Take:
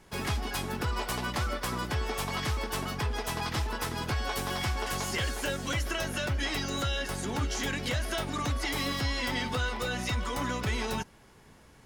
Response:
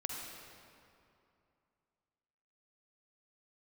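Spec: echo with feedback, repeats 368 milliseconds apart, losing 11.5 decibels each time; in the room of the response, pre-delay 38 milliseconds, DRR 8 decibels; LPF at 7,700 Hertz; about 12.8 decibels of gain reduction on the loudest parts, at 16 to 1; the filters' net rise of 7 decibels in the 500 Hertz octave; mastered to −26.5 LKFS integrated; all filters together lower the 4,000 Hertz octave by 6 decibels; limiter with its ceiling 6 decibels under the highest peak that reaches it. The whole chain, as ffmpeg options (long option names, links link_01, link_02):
-filter_complex "[0:a]lowpass=7700,equalizer=frequency=500:width_type=o:gain=8.5,equalizer=frequency=4000:width_type=o:gain=-8,acompressor=threshold=-37dB:ratio=16,alimiter=level_in=10dB:limit=-24dB:level=0:latency=1,volume=-10dB,aecho=1:1:368|736|1104:0.266|0.0718|0.0194,asplit=2[link_01][link_02];[1:a]atrim=start_sample=2205,adelay=38[link_03];[link_02][link_03]afir=irnorm=-1:irlink=0,volume=-9.5dB[link_04];[link_01][link_04]amix=inputs=2:normalize=0,volume=15.5dB"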